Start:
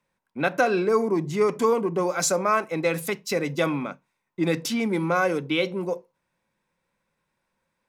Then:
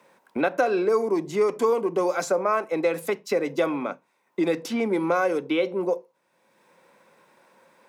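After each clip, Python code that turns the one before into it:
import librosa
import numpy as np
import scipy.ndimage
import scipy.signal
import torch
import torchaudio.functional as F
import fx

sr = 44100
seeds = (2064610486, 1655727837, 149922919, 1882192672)

y = scipy.signal.sosfilt(scipy.signal.butter(2, 410.0, 'highpass', fs=sr, output='sos'), x)
y = fx.tilt_shelf(y, sr, db=6.0, hz=900.0)
y = fx.band_squash(y, sr, depth_pct=70)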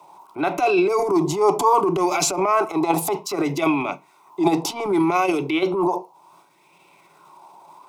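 y = fx.transient(x, sr, attack_db=-8, sustain_db=8)
y = fx.fixed_phaser(y, sr, hz=340.0, stages=8)
y = fx.bell_lfo(y, sr, hz=0.66, low_hz=810.0, high_hz=2600.0, db=13)
y = y * 10.0 ** (6.5 / 20.0)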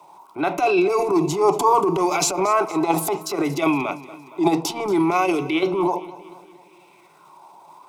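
y = fx.echo_feedback(x, sr, ms=232, feedback_pct=53, wet_db=-17.5)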